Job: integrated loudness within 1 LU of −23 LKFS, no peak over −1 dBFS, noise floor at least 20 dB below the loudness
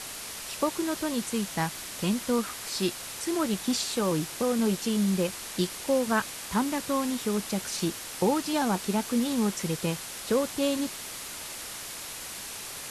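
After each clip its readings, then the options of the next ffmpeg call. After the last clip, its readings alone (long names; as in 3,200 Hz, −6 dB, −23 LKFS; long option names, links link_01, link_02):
background noise floor −39 dBFS; target noise floor −49 dBFS; integrated loudness −29.0 LKFS; sample peak −13.0 dBFS; target loudness −23.0 LKFS
→ -af "afftdn=noise_reduction=10:noise_floor=-39"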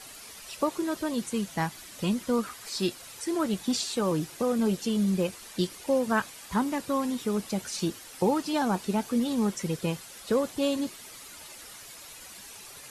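background noise floor −47 dBFS; target noise floor −50 dBFS
→ -af "afftdn=noise_reduction=6:noise_floor=-47"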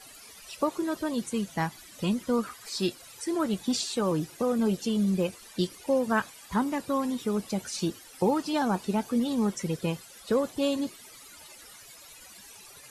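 background noise floor −50 dBFS; integrated loudness −29.5 LKFS; sample peak −13.5 dBFS; target loudness −23.0 LKFS
→ -af "volume=6.5dB"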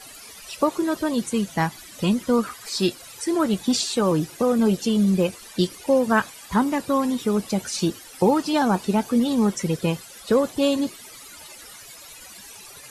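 integrated loudness −23.0 LKFS; sample peak −7.0 dBFS; background noise floor −44 dBFS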